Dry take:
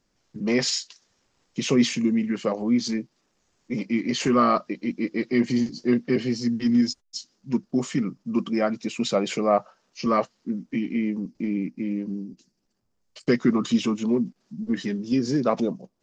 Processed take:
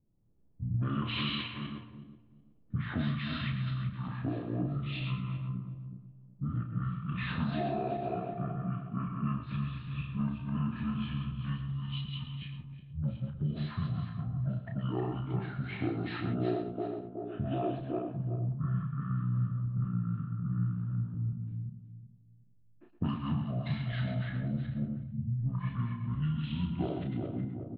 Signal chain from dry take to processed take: regenerating reverse delay 0.107 s, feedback 50%, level -4 dB; low-pass opened by the level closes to 530 Hz, open at -16 dBFS; compressor 6:1, threshold -32 dBFS, peak gain reduction 18.5 dB; spectral gain 14.42–14.65, 450–3600 Hz -16 dB; early reflections 19 ms -5.5 dB, 66 ms -11 dB, 76 ms -12.5 dB; speed mistake 78 rpm record played at 45 rpm

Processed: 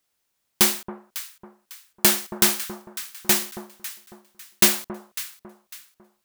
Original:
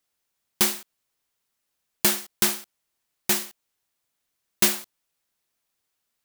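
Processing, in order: echo with dull and thin repeats by turns 0.275 s, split 1200 Hz, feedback 56%, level -10 dB; gain +3.5 dB

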